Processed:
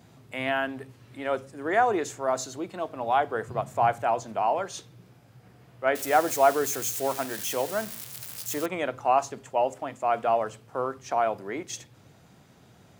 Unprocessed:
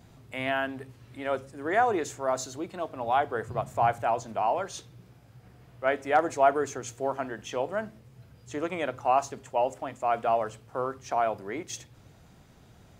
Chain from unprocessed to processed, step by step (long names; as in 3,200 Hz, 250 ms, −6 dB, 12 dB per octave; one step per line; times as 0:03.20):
0:05.95–0:08.66: spike at every zero crossing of −25.5 dBFS
high-pass filter 110 Hz 12 dB per octave
level +1.5 dB